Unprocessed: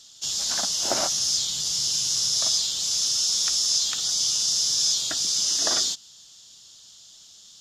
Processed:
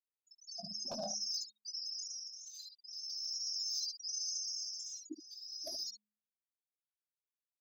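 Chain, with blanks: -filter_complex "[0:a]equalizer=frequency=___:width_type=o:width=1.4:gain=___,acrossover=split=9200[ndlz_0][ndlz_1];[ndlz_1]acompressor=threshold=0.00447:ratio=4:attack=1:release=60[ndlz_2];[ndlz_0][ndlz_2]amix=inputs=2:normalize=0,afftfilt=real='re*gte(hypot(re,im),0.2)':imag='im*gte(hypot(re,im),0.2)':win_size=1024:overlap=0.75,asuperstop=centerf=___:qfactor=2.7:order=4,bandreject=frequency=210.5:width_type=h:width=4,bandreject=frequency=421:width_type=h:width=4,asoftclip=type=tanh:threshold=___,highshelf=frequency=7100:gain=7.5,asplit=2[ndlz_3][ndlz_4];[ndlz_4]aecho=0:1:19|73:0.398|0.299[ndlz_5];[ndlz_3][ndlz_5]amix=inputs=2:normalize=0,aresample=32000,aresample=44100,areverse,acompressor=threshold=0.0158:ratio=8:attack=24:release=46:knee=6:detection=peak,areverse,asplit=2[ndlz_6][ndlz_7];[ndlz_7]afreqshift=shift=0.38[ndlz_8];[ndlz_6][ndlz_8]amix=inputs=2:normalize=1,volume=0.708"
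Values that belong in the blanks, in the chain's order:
210, 12, 3500, 0.0668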